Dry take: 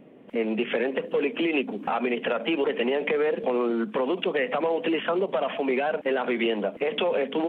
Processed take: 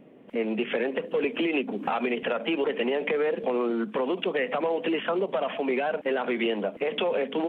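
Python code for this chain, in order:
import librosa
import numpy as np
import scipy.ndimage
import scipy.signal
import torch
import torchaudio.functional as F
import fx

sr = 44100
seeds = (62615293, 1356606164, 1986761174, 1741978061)

y = fx.band_squash(x, sr, depth_pct=70, at=(1.24, 2.23))
y = y * 10.0 ** (-1.5 / 20.0)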